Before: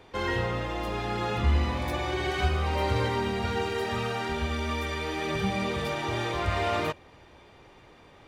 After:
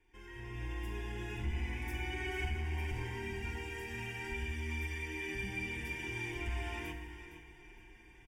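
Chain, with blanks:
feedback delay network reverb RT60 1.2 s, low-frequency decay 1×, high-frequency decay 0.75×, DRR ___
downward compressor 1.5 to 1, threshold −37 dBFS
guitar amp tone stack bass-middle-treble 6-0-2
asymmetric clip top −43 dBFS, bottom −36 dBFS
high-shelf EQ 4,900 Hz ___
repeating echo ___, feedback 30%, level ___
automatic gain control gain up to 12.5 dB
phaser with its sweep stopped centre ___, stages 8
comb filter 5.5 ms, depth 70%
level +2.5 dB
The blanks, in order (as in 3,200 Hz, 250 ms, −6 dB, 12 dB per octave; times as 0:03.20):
4.5 dB, −4.5 dB, 461 ms, −12.5 dB, 840 Hz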